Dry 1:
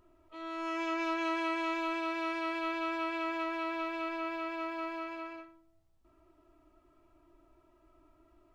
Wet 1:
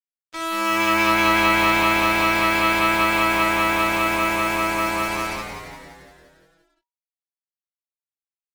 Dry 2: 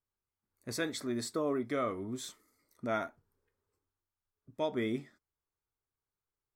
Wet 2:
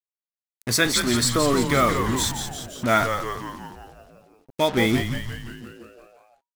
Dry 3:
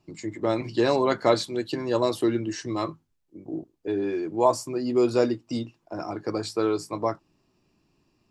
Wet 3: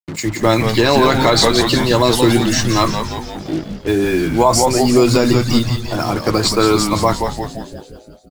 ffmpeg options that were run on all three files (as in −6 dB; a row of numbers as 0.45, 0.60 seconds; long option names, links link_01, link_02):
-filter_complex "[0:a]highpass=49,equalizer=frequency=430:width=0.53:gain=-9,acrusher=bits=7:mix=0:aa=0.5,asplit=9[link_01][link_02][link_03][link_04][link_05][link_06][link_07][link_08][link_09];[link_02]adelay=173,afreqshift=-120,volume=-7dB[link_10];[link_03]adelay=346,afreqshift=-240,volume=-11.3dB[link_11];[link_04]adelay=519,afreqshift=-360,volume=-15.6dB[link_12];[link_05]adelay=692,afreqshift=-480,volume=-19.9dB[link_13];[link_06]adelay=865,afreqshift=-600,volume=-24.2dB[link_14];[link_07]adelay=1038,afreqshift=-720,volume=-28.5dB[link_15];[link_08]adelay=1211,afreqshift=-840,volume=-32.8dB[link_16];[link_09]adelay=1384,afreqshift=-960,volume=-37.1dB[link_17];[link_01][link_10][link_11][link_12][link_13][link_14][link_15][link_16][link_17]amix=inputs=9:normalize=0,alimiter=level_in=20dB:limit=-1dB:release=50:level=0:latency=1,volume=-1dB"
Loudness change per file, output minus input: +16.5, +14.0, +11.5 LU